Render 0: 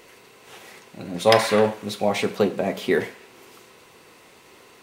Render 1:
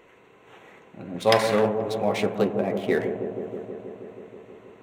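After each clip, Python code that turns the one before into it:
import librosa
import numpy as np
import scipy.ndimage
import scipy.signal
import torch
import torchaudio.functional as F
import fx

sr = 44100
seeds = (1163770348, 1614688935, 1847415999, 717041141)

y = fx.wiener(x, sr, points=9)
y = fx.echo_wet_lowpass(y, sr, ms=160, feedback_pct=79, hz=690.0, wet_db=-6.5)
y = y * librosa.db_to_amplitude(-3.0)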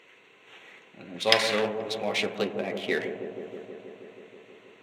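y = fx.weighting(x, sr, curve='D')
y = y * librosa.db_to_amplitude(-5.5)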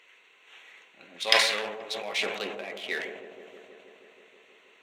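y = fx.highpass(x, sr, hz=1300.0, slope=6)
y = fx.sustainer(y, sr, db_per_s=57.0)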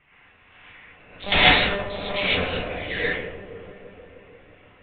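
y = fx.lpc_monotone(x, sr, seeds[0], pitch_hz=200.0, order=10)
y = fx.env_lowpass(y, sr, base_hz=1900.0, full_db=-24.0)
y = fx.rev_gated(y, sr, seeds[1], gate_ms=170, shape='rising', drr_db=-7.5)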